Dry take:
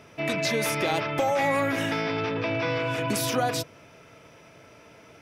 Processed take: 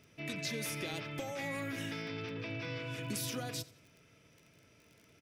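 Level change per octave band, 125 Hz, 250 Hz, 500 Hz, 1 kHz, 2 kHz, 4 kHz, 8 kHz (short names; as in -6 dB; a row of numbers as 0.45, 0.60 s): -9.0, -11.5, -16.5, -19.5, -12.5, -10.0, -9.0 dB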